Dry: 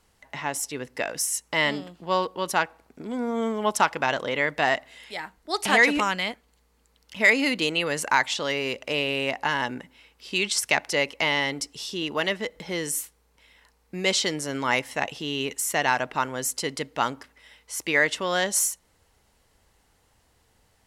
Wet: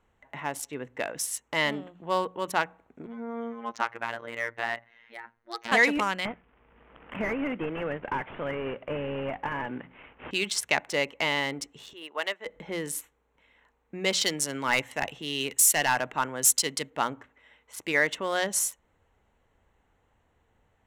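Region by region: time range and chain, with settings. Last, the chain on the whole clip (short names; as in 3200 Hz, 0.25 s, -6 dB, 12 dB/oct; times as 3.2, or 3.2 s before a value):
3.06–5.72 robotiser 116 Hz + rippled Chebyshev low-pass 6400 Hz, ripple 6 dB
6.25–10.31 CVSD 16 kbps + three-band squash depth 70%
11.93–12.46 HPF 550 Hz + upward expander, over -43 dBFS
14.21–16.9 high shelf 2900 Hz +11 dB + hard clip -13.5 dBFS + three-band expander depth 40%
whole clip: Wiener smoothing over 9 samples; notches 60/120/180 Hz; gain -2.5 dB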